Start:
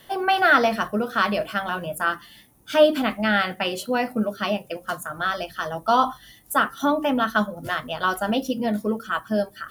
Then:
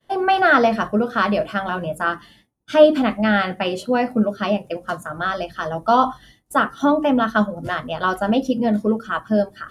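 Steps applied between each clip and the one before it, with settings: expander -42 dBFS; LPF 9000 Hz 12 dB/oct; tilt shelf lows +4 dB, about 1200 Hz; gain +2 dB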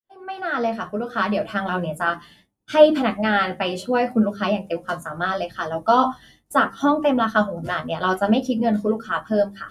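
opening faded in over 1.69 s; notches 50/100/150/200 Hz; flange 0.71 Hz, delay 8.5 ms, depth 4.8 ms, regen +37%; gain +3.5 dB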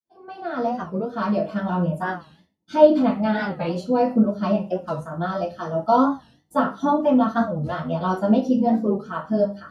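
reverb RT60 0.30 s, pre-delay 3 ms, DRR -8.5 dB; record warp 45 rpm, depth 160 cents; gain -17 dB

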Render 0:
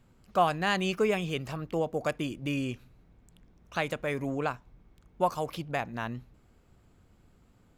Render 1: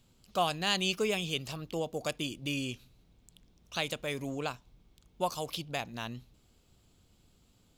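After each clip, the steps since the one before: resonant high shelf 2500 Hz +9.5 dB, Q 1.5; gain -4.5 dB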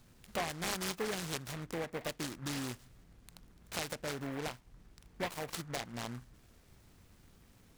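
compressor 2:1, threshold -46 dBFS, peak gain reduction 12.5 dB; noise-modulated delay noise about 1200 Hz, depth 0.16 ms; gain +4 dB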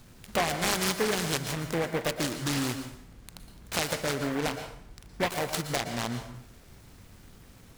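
plate-style reverb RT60 0.63 s, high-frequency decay 0.85×, pre-delay 0.105 s, DRR 8 dB; gain +9 dB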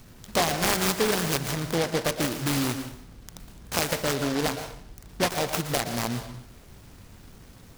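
noise-modulated delay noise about 3200 Hz, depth 0.081 ms; gain +3.5 dB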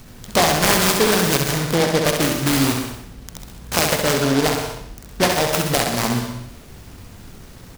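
feedback echo 66 ms, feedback 41%, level -5 dB; gain +7 dB

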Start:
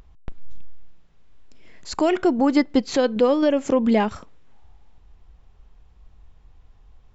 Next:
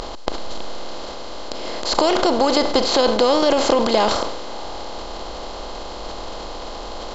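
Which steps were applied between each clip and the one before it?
per-bin compression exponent 0.4; graphic EQ 125/250/1000/2000/4000 Hz -7/-8/+5/-7/+11 dB; transient shaper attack +2 dB, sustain +7 dB; gain -1 dB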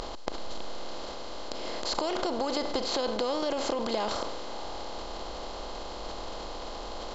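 compressor 3:1, threshold -21 dBFS, peak gain reduction 8 dB; gain -7 dB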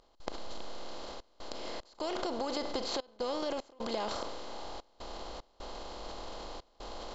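step gate ".xxxxx.xx" 75 bpm -24 dB; gain -5 dB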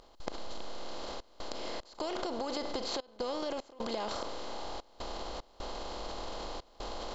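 compressor 2:1, threshold -47 dBFS, peak gain reduction 9.5 dB; gain +7.5 dB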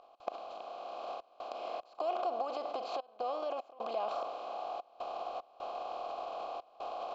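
vowel filter a; gain +10 dB

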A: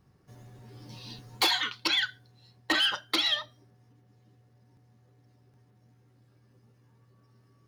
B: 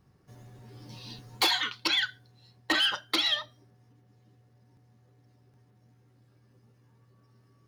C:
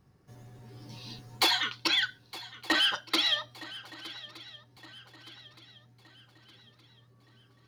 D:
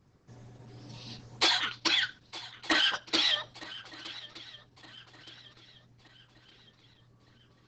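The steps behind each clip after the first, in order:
nothing audible
swung echo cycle 1.218 s, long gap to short 3:1, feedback 42%, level -18 dB
Opus 10 kbps 48000 Hz

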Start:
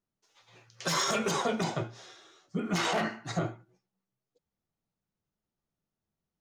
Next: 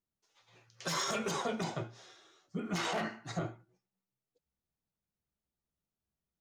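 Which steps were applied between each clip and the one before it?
bell 64 Hz +11 dB 0.32 oct; gain -5.5 dB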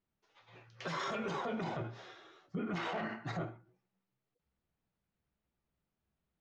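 LPF 2800 Hz 12 dB/oct; limiter -36.5 dBFS, peak gain reduction 11 dB; ending taper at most 140 dB/s; gain +6.5 dB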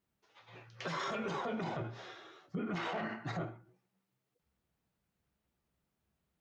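HPF 40 Hz; in parallel at -1 dB: compressor, threshold -46 dBFS, peak gain reduction 11.5 dB; on the sum: gain -2 dB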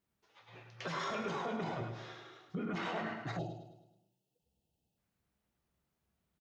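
on a send: feedback echo 0.105 s, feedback 48%, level -8 dB; on the sum: spectral gain 3.39–4.98, 910–2500 Hz -24 dB; gain -1 dB

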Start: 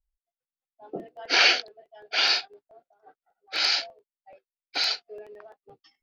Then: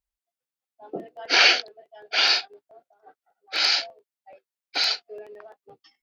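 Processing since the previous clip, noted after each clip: HPF 130 Hz 6 dB/oct; gain +2.5 dB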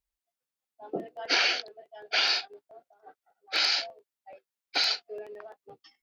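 compressor 6:1, threshold -22 dBFS, peak gain reduction 10 dB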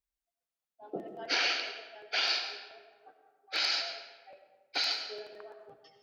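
digital reverb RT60 1.2 s, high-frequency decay 0.75×, pre-delay 50 ms, DRR 6 dB; gain -5 dB

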